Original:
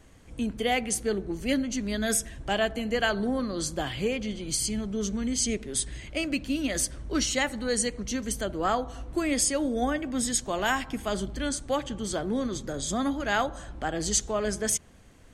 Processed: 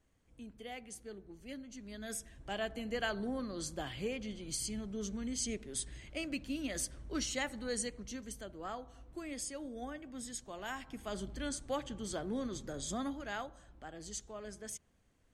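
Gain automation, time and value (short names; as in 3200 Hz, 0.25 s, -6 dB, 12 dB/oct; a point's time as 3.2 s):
1.62 s -20 dB
2.81 s -10 dB
7.76 s -10 dB
8.52 s -16.5 dB
10.63 s -16.5 dB
11.31 s -9 dB
12.93 s -9 dB
13.61 s -18 dB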